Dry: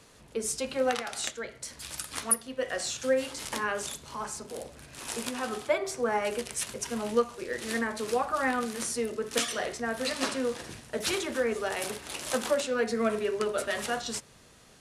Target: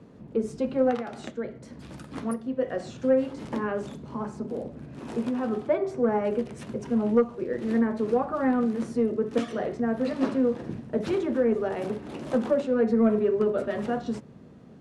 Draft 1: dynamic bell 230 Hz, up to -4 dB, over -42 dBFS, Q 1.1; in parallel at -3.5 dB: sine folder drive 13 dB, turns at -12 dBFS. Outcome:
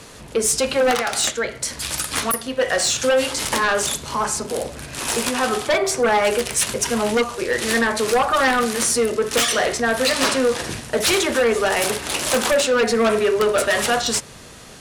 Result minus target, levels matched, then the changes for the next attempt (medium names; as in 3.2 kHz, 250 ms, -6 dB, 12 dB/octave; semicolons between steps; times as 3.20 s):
250 Hz band -8.5 dB
add after dynamic bell: band-pass filter 210 Hz, Q 1.4